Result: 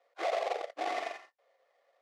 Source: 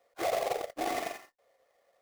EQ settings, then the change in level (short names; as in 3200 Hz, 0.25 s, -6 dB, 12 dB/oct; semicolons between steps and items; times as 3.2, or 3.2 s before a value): BPF 490–4400 Hz; 0.0 dB